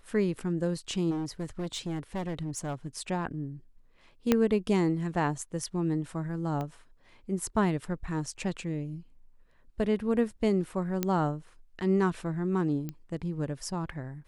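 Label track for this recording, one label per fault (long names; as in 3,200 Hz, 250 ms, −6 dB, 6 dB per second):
1.100000	2.880000	clipping −29.5 dBFS
4.320000	4.320000	click −9 dBFS
6.610000	6.610000	click −23 dBFS
11.030000	11.030000	click −13 dBFS
12.890000	12.890000	click −23 dBFS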